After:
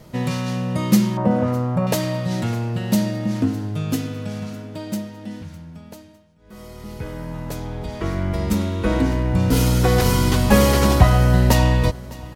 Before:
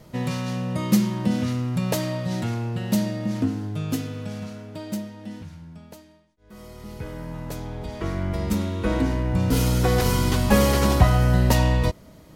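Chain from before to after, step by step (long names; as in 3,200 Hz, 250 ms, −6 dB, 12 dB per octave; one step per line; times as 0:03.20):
0:01.17–0:01.87: drawn EQ curve 340 Hz 0 dB, 560 Hz +11 dB, 1,200 Hz +6 dB, 3,700 Hz −16 dB
repeating echo 606 ms, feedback 39%, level −21 dB
level +3.5 dB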